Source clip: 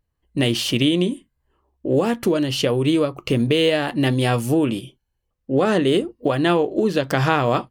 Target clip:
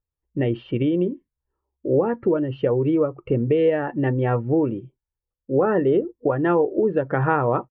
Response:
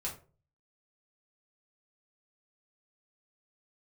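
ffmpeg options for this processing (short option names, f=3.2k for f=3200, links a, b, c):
-af "afftdn=nr=13:nf=-27,lowpass=f=1.8k:w=0.5412,lowpass=f=1.8k:w=1.3066,aecho=1:1:2.2:0.34,volume=-1.5dB"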